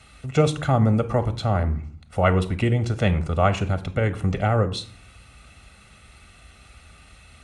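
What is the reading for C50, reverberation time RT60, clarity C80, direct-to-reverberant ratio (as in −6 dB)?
15.5 dB, 0.45 s, 19.5 dB, 10.5 dB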